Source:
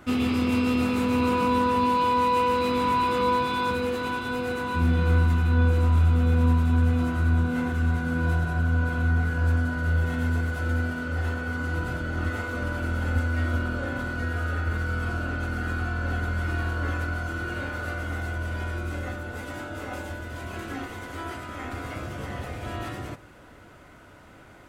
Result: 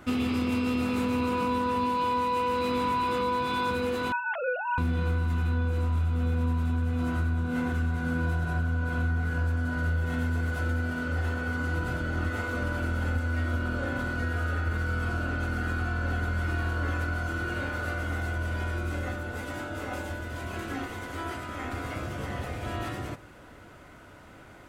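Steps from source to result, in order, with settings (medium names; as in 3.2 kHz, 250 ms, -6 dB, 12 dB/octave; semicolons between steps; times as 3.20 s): 4.12–4.78 s: formants replaced by sine waves; compression, threshold -24 dBFS, peak gain reduction 8 dB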